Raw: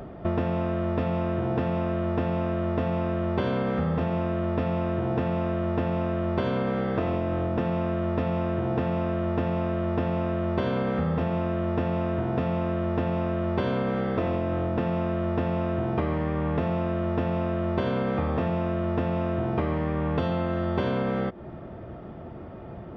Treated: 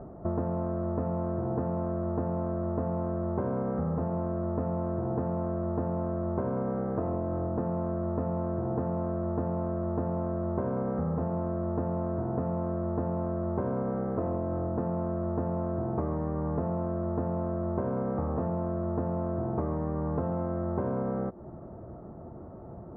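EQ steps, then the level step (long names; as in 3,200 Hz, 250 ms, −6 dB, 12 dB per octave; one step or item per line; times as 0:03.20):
low-pass filter 1,200 Hz 24 dB per octave
−4.0 dB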